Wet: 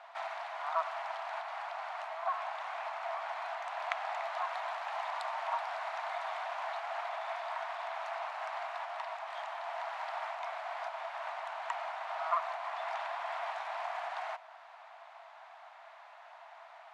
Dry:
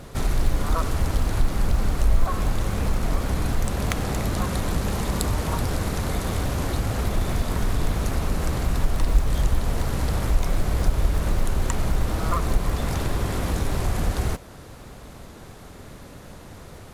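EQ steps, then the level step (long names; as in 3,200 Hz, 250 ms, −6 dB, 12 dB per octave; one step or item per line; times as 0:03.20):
Chebyshev high-pass with heavy ripple 650 Hz, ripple 3 dB
low-pass filter 2,500 Hz 12 dB per octave
tilt shelving filter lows +4.5 dB, about 910 Hz
0.0 dB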